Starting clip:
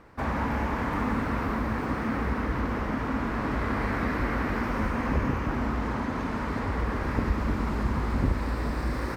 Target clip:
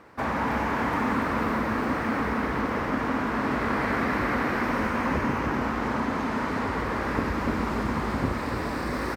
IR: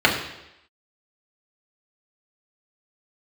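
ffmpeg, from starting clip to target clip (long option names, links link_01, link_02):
-af "highpass=frequency=220:poles=1,aecho=1:1:287:0.501,volume=3.5dB"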